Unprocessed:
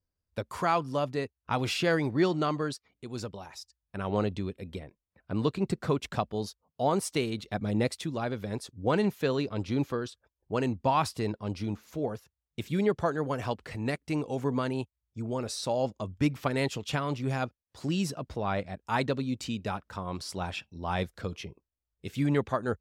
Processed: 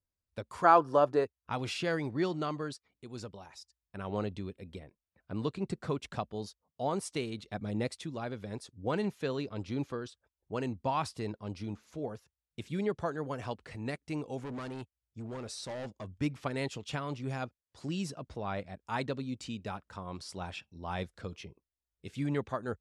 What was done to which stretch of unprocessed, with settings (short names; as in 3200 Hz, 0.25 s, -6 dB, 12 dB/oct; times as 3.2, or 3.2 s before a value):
0.64–1.25 spectral gain 290–1800 Hz +11 dB
14.41–16.1 hard clip -31 dBFS
whole clip: steep low-pass 11000 Hz 36 dB/oct; gain -6 dB